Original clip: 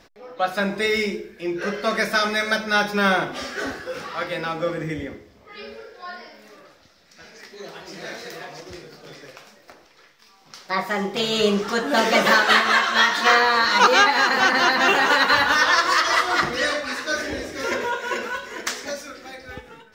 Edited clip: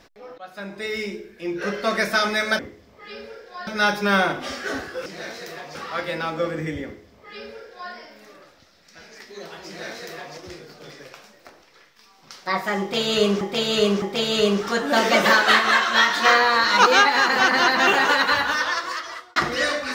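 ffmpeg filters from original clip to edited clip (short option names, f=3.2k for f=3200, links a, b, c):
-filter_complex "[0:a]asplit=9[a][b][c][d][e][f][g][h][i];[a]atrim=end=0.38,asetpts=PTS-STARTPTS,afade=t=out:st=0.376:d=0.004:c=hsin:silence=0.1[j];[b]atrim=start=0.38:end=2.592,asetpts=PTS-STARTPTS,afade=t=in:d=1.34:silence=0.1[k];[c]atrim=start=5.068:end=6.152[l];[d]atrim=start=2.588:end=3.982[m];[e]atrim=start=7.898:end=8.592[n];[f]atrim=start=3.978:end=11.642[o];[g]atrim=start=11.028:end=11.642[p];[h]atrim=start=11.028:end=16.37,asetpts=PTS-STARTPTS,afade=t=out:st=3.952:d=1.39[q];[i]atrim=start=16.37,asetpts=PTS-STARTPTS,afade=t=in:d=0.004:c=hsin[r];[j][k]concat=n=2:v=0:a=1[s];[s][l]acrossfade=d=0.004:c1=hsin:c2=hsin[t];[t][m]acrossfade=d=0.004:c1=hsin:c2=hsin[u];[u][n]acrossfade=d=0.004:c1=hsin:c2=hsin[v];[v][o]acrossfade=d=0.004:c1=hsin:c2=hsin[w];[w][p]acrossfade=d=0.004:c1=hsin:c2=hsin[x];[q][r]concat=n=2:v=0:a=1[y];[x][y]acrossfade=d=0.004:c1=hsin:c2=hsin"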